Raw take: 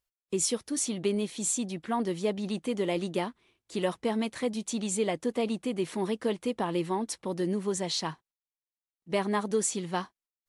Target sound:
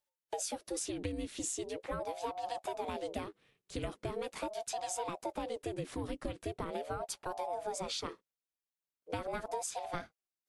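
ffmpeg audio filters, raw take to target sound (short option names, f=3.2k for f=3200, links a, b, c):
-af "afreqshift=-200,acompressor=threshold=-32dB:ratio=6,aeval=exprs='val(0)*sin(2*PI*500*n/s+500*0.45/0.41*sin(2*PI*0.41*n/s))':c=same"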